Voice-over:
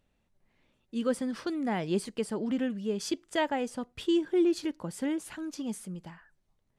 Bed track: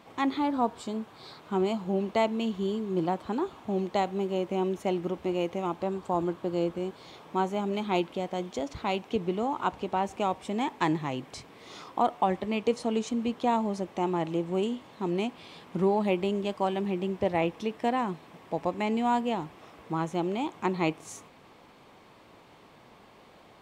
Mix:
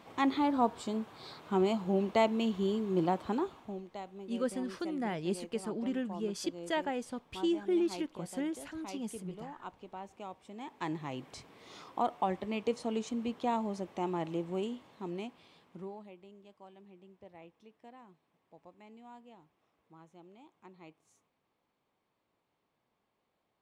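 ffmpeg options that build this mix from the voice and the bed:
-filter_complex "[0:a]adelay=3350,volume=0.596[s0];[1:a]volume=2.82,afade=t=out:st=3.3:d=0.52:silence=0.177828,afade=t=in:st=10.57:d=0.68:silence=0.298538,afade=t=out:st=14.4:d=1.71:silence=0.0944061[s1];[s0][s1]amix=inputs=2:normalize=0"

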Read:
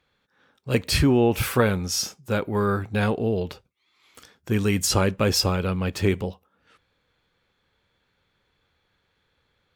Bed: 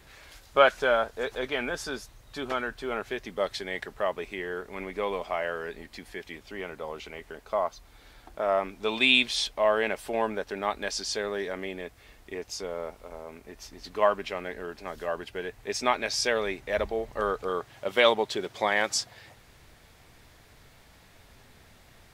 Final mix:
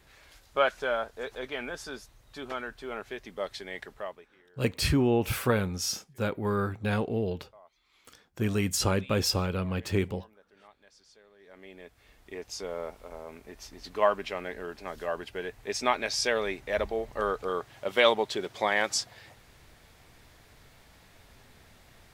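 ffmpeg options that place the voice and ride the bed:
-filter_complex "[0:a]adelay=3900,volume=0.531[s0];[1:a]volume=11.9,afade=t=out:st=3.91:d=0.37:silence=0.0749894,afade=t=in:st=11.39:d=1.34:silence=0.0446684[s1];[s0][s1]amix=inputs=2:normalize=0"

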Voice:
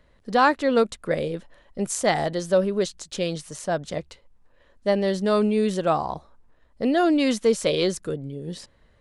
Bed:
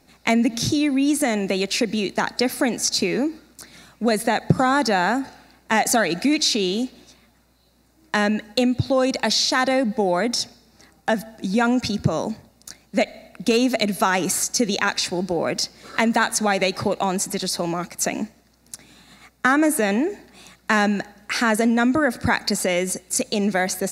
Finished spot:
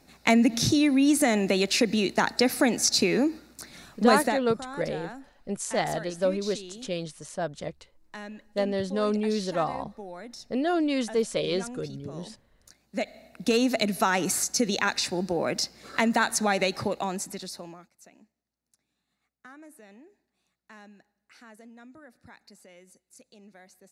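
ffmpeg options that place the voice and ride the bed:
-filter_complex "[0:a]adelay=3700,volume=0.531[s0];[1:a]volume=5.31,afade=t=out:st=4.19:d=0.24:silence=0.112202,afade=t=in:st=12.55:d=1.01:silence=0.158489,afade=t=out:st=16.6:d=1.3:silence=0.0473151[s1];[s0][s1]amix=inputs=2:normalize=0"

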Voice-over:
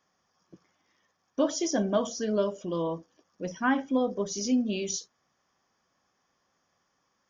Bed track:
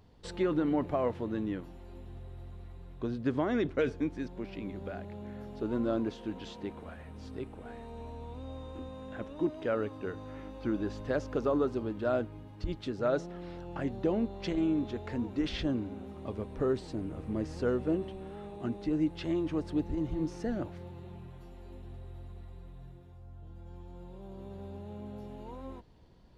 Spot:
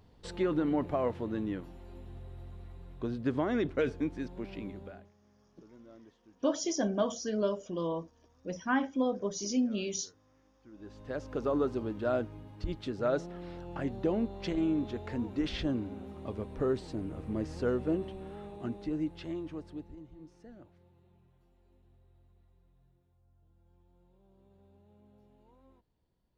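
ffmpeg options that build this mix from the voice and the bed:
-filter_complex "[0:a]adelay=5050,volume=0.668[s0];[1:a]volume=13.3,afade=t=out:st=4.59:d=0.53:silence=0.0707946,afade=t=in:st=10.71:d=0.9:silence=0.0707946,afade=t=out:st=18.33:d=1.74:silence=0.125893[s1];[s0][s1]amix=inputs=2:normalize=0"

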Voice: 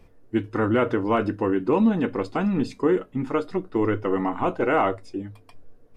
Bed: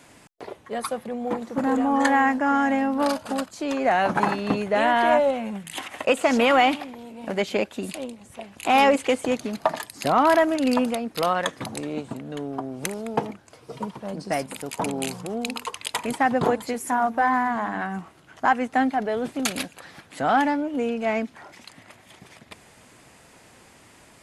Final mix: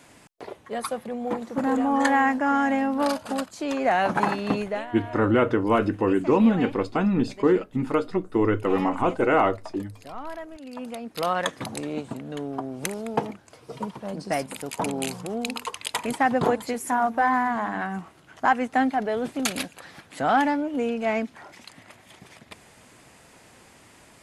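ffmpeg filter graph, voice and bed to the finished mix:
-filter_complex "[0:a]adelay=4600,volume=1.12[s0];[1:a]volume=7.5,afade=t=out:st=4.61:d=0.25:silence=0.125893,afade=t=in:st=10.72:d=0.72:silence=0.11885[s1];[s0][s1]amix=inputs=2:normalize=0"

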